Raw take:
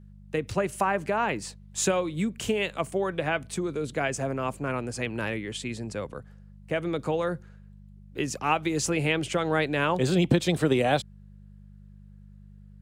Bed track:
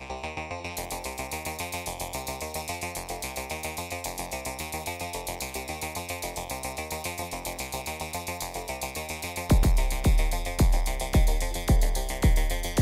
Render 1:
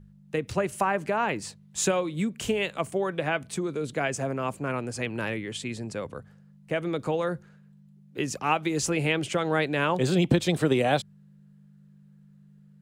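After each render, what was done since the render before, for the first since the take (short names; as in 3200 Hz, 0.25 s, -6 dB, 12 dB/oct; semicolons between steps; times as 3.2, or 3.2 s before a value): de-hum 50 Hz, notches 2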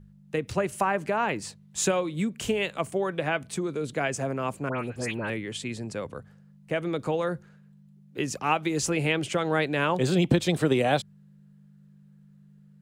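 4.69–5.3 dispersion highs, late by 0.101 s, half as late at 2200 Hz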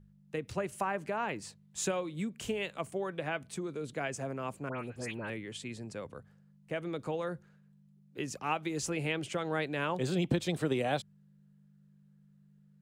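gain -8 dB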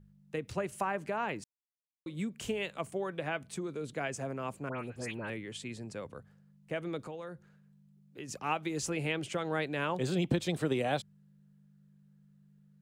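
1.44–2.06 mute; 7.07–8.29 compressor 1.5:1, threshold -52 dBFS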